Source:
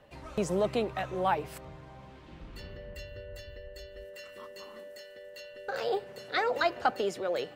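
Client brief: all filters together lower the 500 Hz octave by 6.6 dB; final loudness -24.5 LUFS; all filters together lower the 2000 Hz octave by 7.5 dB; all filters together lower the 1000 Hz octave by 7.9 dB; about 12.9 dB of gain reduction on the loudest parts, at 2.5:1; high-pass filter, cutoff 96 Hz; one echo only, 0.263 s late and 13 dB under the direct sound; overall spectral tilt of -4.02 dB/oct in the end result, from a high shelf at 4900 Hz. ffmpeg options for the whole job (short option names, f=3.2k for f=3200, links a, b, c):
-af "highpass=96,equalizer=f=500:t=o:g=-6,equalizer=f=1k:t=o:g=-7,equalizer=f=2k:t=o:g=-5.5,highshelf=f=4.9k:g=-8.5,acompressor=threshold=-49dB:ratio=2.5,aecho=1:1:263:0.224,volume=26dB"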